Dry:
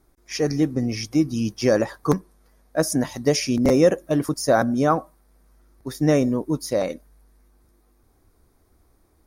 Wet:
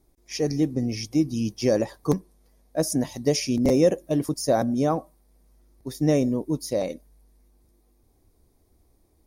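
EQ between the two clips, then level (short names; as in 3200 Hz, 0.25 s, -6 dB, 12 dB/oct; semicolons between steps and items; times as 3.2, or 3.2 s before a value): bell 1400 Hz -11.5 dB 0.86 oct; -2.0 dB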